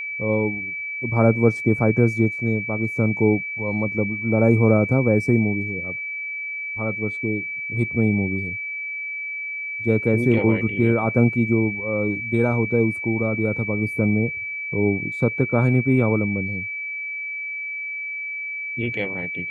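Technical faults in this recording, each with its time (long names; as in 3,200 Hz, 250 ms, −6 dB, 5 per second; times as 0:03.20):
whistle 2,300 Hz −27 dBFS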